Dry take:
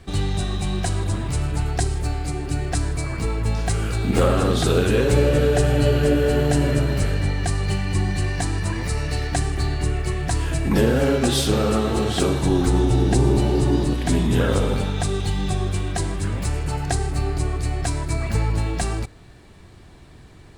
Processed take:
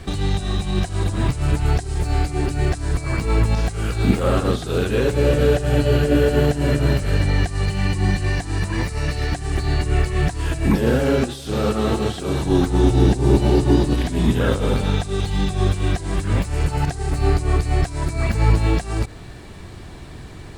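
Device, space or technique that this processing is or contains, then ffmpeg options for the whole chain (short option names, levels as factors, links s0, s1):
de-esser from a sidechain: -filter_complex "[0:a]asplit=2[s0][s1];[s1]highpass=5800,apad=whole_len=907573[s2];[s0][s2]sidechaincompress=threshold=0.00501:ratio=12:attack=0.89:release=92,volume=2.82"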